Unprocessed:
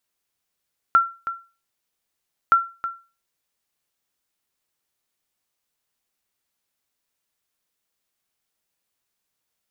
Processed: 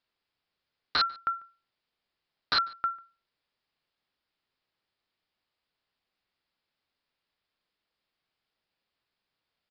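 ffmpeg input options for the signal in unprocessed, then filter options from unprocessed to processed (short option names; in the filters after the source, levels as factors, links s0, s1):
-f lavfi -i "aevalsrc='0.422*(sin(2*PI*1360*mod(t,1.57))*exp(-6.91*mod(t,1.57)/0.32)+0.237*sin(2*PI*1360*max(mod(t,1.57)-0.32,0))*exp(-6.91*max(mod(t,1.57)-0.32,0)/0.32))':d=3.14:s=44100"
-filter_complex "[0:a]aresample=11025,aeval=exprs='(mod(9.44*val(0)+1,2)-1)/9.44':c=same,aresample=44100,asplit=2[s0][s1];[s1]adelay=145.8,volume=0.0562,highshelf=f=4000:g=-3.28[s2];[s0][s2]amix=inputs=2:normalize=0"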